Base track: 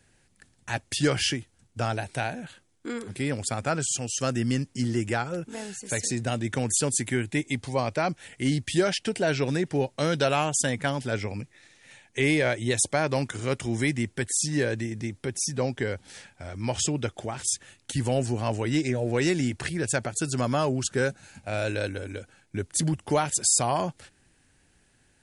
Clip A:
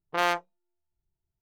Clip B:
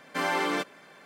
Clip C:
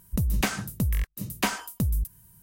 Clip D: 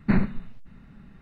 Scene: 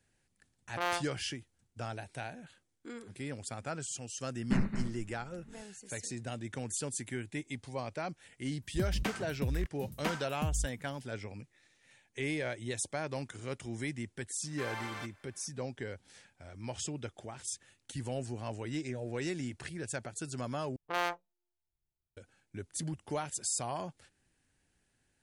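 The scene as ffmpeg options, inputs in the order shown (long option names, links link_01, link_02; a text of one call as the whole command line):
ffmpeg -i bed.wav -i cue0.wav -i cue1.wav -i cue2.wav -i cue3.wav -filter_complex "[1:a]asplit=2[link_01][link_02];[0:a]volume=-12dB[link_03];[4:a]aecho=1:1:220:0.398[link_04];[3:a]equalizer=frequency=14000:width_type=o:width=1.8:gain=-11[link_05];[2:a]highpass=700[link_06];[link_03]asplit=2[link_07][link_08];[link_07]atrim=end=20.764[link_09];[link_02]atrim=end=1.41,asetpts=PTS-STARTPTS,volume=-7.5dB[link_10];[link_08]atrim=start=22.166[link_11];[link_01]atrim=end=1.41,asetpts=PTS-STARTPTS,volume=-8dB,afade=type=in:duration=0.004:curve=hsin,afade=type=out:start_time=1.406:duration=0.004:curve=hsin,adelay=630[link_12];[link_04]atrim=end=1.21,asetpts=PTS-STARTPTS,volume=-9dB,afade=type=in:duration=0.004:curve=hsin,afade=type=out:start_time=1.206:duration=0.004:curve=hsin,adelay=4420[link_13];[link_05]atrim=end=2.42,asetpts=PTS-STARTPTS,volume=-8.5dB,afade=type=in:duration=0.004:curve=hsin,afade=type=out:start_time=2.416:duration=0.004:curve=hsin,adelay=8620[link_14];[link_06]atrim=end=1.05,asetpts=PTS-STARTPTS,volume=-12dB,afade=type=in:duration=0.004:curve=hsin,afade=type=out:start_time=1.046:duration=0.004:curve=hsin,adelay=14430[link_15];[link_09][link_10]acrossfade=duration=0.004:curve1=hsin:curve2=hsin[link_16];[link_16][link_11]acrossfade=duration=0.004:curve1=hsin:curve2=hsin[link_17];[link_17][link_12][link_13][link_14][link_15]amix=inputs=5:normalize=0" out.wav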